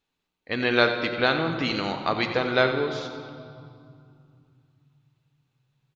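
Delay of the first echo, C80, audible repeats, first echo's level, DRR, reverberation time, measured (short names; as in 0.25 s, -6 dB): 91 ms, 6.5 dB, 2, -12.0 dB, 5.0 dB, 2.4 s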